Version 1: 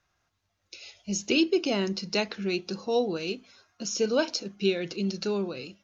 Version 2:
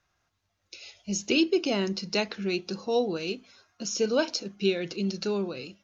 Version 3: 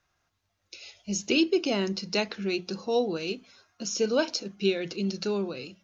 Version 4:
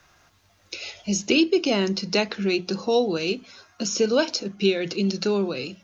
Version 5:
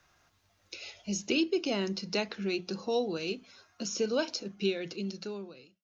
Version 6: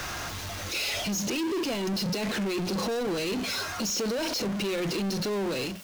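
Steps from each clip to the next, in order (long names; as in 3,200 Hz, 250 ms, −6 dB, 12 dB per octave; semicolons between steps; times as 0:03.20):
no processing that can be heard
mains-hum notches 60/120/180 Hz
multiband upward and downward compressor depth 40%; level +5 dB
fade-out on the ending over 1.17 s; level −9 dB
power curve on the samples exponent 0.35; brickwall limiter −25.5 dBFS, peak gain reduction 9.5 dB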